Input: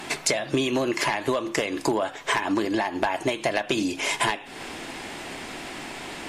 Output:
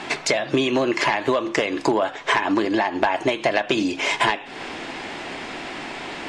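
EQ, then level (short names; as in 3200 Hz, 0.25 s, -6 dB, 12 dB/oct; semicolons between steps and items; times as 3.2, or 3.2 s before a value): air absorption 99 m; low shelf 180 Hz -6.5 dB; +5.5 dB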